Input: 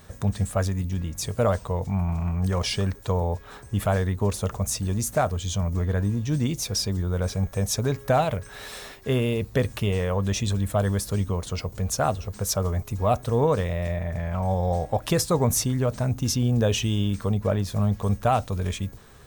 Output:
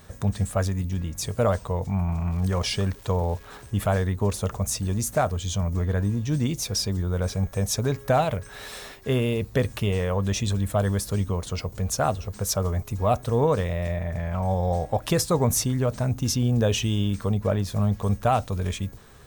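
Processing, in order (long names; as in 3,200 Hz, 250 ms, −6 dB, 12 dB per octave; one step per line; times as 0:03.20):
0:02.30–0:03.70: surface crackle 410 per second −40 dBFS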